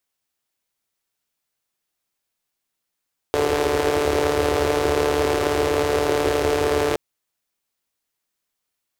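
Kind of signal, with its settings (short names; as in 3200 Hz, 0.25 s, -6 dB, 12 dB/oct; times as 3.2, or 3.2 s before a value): four-cylinder engine model, steady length 3.62 s, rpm 4400, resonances 81/410 Hz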